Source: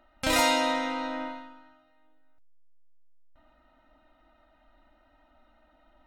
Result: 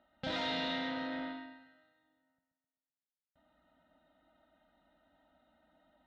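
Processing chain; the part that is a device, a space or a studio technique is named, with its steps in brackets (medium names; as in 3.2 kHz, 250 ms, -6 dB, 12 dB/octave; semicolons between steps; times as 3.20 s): analogue delay pedal into a guitar amplifier (bucket-brigade echo 129 ms, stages 4096, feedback 52%, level -8 dB; valve stage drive 30 dB, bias 0.75; cabinet simulation 85–3900 Hz, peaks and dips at 170 Hz +10 dB, 350 Hz -5 dB, 1.1 kHz -10 dB, 2.4 kHz -8 dB, 3.6 kHz +5 dB); trim -1.5 dB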